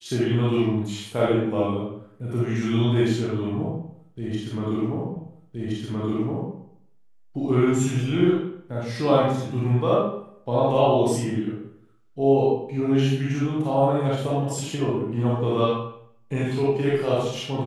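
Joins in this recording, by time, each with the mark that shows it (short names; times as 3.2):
5.16 repeat of the last 1.37 s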